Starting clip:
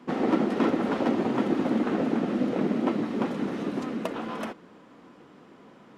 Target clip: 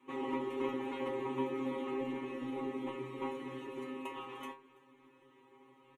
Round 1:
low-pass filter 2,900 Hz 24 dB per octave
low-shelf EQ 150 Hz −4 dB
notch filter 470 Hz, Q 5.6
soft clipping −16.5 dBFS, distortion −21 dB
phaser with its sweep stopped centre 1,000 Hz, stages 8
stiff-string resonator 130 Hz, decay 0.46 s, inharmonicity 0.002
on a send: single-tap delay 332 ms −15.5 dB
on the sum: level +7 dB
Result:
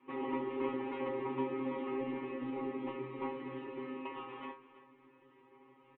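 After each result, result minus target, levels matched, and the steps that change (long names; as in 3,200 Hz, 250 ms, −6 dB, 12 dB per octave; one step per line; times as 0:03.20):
echo-to-direct +9 dB; 4,000 Hz band −4.0 dB
change: single-tap delay 332 ms −24.5 dB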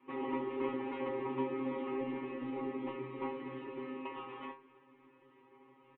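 4,000 Hz band −4.0 dB
remove: low-pass filter 2,900 Hz 24 dB per octave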